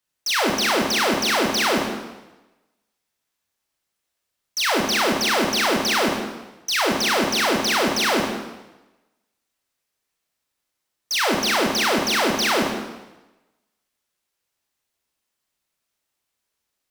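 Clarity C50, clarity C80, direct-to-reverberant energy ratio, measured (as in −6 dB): 3.0 dB, 4.5 dB, 0.0 dB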